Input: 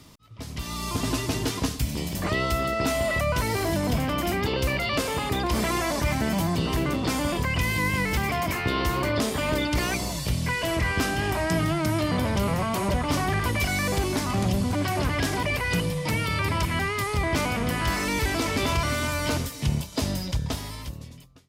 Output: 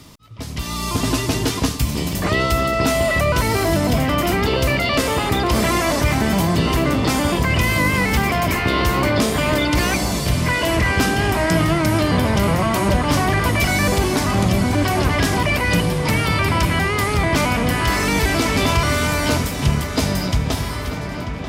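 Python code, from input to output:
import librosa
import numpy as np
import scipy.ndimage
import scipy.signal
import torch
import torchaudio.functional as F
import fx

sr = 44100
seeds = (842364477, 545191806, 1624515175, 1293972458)

y = fx.echo_filtered(x, sr, ms=939, feedback_pct=83, hz=4700.0, wet_db=-12.0)
y = y * 10.0 ** (7.0 / 20.0)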